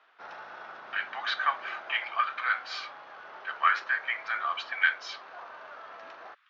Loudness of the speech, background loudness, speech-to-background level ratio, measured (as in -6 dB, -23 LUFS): -30.0 LUFS, -45.5 LUFS, 15.5 dB